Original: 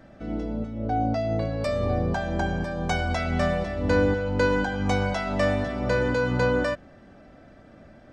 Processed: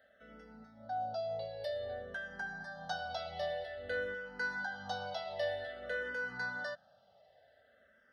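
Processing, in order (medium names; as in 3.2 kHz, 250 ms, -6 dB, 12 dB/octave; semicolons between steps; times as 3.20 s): high-pass 980 Hz 6 dB/octave; static phaser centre 1.6 kHz, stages 8; barber-pole phaser -0.52 Hz; trim -4 dB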